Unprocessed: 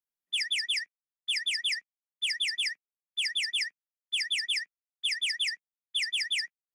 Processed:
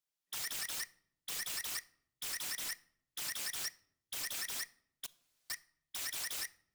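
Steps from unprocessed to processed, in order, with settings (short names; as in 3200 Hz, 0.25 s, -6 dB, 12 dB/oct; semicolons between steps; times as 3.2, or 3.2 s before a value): 3.65–4.15 HPF 1500 Hz 6 dB/oct; 5.06–5.5 room tone; wrapped overs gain 36.5 dB; bell 5100 Hz +5.5 dB 2.4 oct; reverb RT60 0.75 s, pre-delay 7 ms, DRR 16 dB; gain -1.5 dB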